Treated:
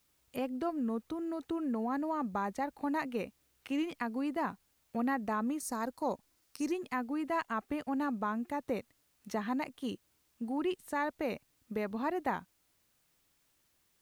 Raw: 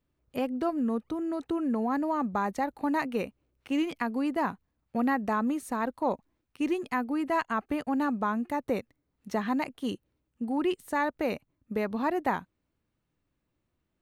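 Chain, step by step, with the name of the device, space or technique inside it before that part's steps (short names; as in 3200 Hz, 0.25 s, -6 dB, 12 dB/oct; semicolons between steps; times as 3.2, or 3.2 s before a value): 5.6–6.72 resonant high shelf 4000 Hz +8 dB, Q 3; noise-reduction cassette on a plain deck (mismatched tape noise reduction encoder only; wow and flutter 13 cents; white noise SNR 38 dB); gain -5.5 dB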